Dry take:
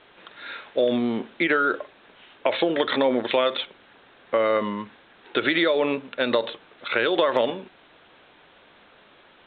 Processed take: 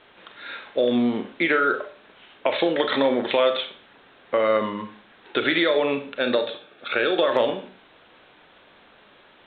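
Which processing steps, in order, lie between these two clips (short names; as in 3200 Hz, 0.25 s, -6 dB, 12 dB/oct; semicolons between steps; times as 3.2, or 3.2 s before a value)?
6.19–7.27 notch comb 1000 Hz; Schroeder reverb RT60 0.41 s, combs from 29 ms, DRR 7.5 dB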